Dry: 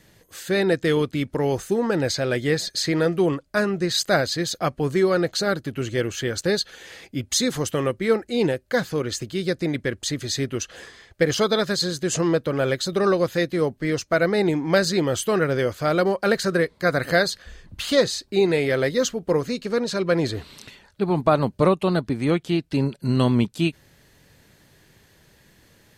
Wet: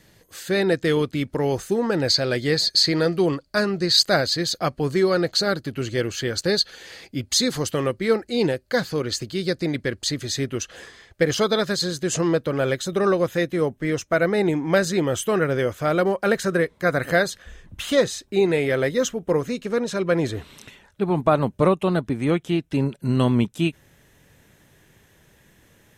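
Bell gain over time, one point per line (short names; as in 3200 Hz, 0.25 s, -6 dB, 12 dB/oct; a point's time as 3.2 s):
bell 4500 Hz 0.23 oct
+2 dB
from 2.08 s +14 dB
from 4.03 s +7.5 dB
from 10.18 s -1.5 dB
from 12.81 s -12.5 dB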